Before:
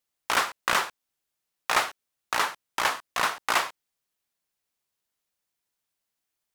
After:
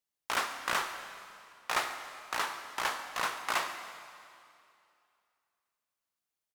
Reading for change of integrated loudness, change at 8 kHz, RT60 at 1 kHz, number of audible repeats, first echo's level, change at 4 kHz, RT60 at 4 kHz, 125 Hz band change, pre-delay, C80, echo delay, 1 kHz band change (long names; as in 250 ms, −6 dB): −7.0 dB, −6.5 dB, 2.5 s, 1, −17.5 dB, −6.5 dB, 2.4 s, −7.0 dB, 6 ms, 8.5 dB, 143 ms, −6.5 dB